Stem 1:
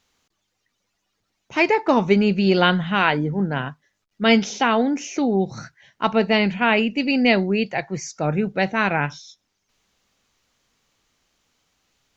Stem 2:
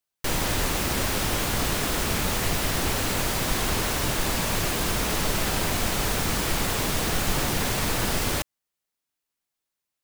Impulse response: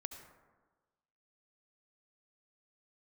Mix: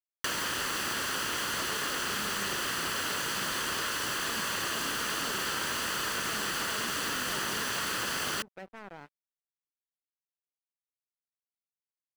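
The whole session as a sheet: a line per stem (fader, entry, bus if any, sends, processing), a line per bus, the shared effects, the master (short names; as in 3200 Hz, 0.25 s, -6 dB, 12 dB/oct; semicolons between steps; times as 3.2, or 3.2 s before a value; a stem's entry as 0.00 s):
-17.0 dB, 0.00 s, no send, treble ducked by the level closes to 1000 Hz, closed at -15.5 dBFS; limiter -13 dBFS, peak gain reduction 7.5 dB; notches 60/120/180/240/300 Hz
-1.5 dB, 0.00 s, no send, minimum comb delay 0.66 ms; overdrive pedal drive 15 dB, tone 6300 Hz, clips at -12.5 dBFS; bell 1000 Hz +2.5 dB 2.7 oct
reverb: off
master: HPF 160 Hz 6 dB/oct; crossover distortion -46 dBFS; compressor 6:1, threshold -30 dBFS, peak gain reduction 8 dB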